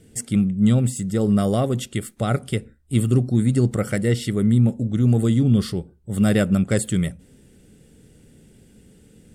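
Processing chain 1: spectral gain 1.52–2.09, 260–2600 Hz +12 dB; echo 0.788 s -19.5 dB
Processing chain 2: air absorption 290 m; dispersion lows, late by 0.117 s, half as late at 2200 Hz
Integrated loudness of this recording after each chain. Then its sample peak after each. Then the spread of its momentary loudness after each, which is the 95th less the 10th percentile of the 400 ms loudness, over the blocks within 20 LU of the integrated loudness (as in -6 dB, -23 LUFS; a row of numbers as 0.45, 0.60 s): -20.0, -21.5 LUFS; -1.0, -7.5 dBFS; 12, 9 LU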